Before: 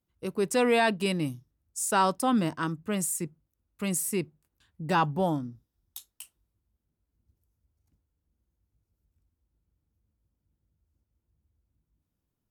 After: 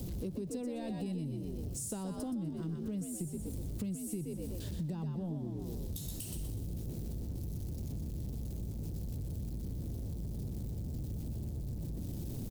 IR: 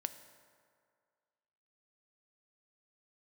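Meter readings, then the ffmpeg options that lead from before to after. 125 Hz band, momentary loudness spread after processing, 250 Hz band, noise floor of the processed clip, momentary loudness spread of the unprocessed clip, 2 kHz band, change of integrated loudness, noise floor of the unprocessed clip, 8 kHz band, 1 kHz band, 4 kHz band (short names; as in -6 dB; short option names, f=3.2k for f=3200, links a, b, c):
+1.0 dB, 3 LU, -6.0 dB, -42 dBFS, 18 LU, -27.0 dB, -12.0 dB, -83 dBFS, -10.5 dB, -24.5 dB, -15.0 dB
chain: -filter_complex "[0:a]aeval=exprs='val(0)+0.5*0.0119*sgn(val(0))':c=same,asplit=6[a][b][c][d][e][f];[b]adelay=123,afreqshift=58,volume=-5dB[g];[c]adelay=246,afreqshift=116,volume=-13.2dB[h];[d]adelay=369,afreqshift=174,volume=-21.4dB[i];[e]adelay=492,afreqshift=232,volume=-29.5dB[j];[f]adelay=615,afreqshift=290,volume=-37.7dB[k];[a][g][h][i][j][k]amix=inputs=6:normalize=0,acrossover=split=140[l][m];[m]acompressor=threshold=-37dB:ratio=3[n];[l][n]amix=inputs=2:normalize=0,firequalizer=gain_entry='entry(160,0);entry(1200,-23);entry(4100,-10)':delay=0.05:min_phase=1,acompressor=threshold=-44dB:ratio=6,volume=8.5dB"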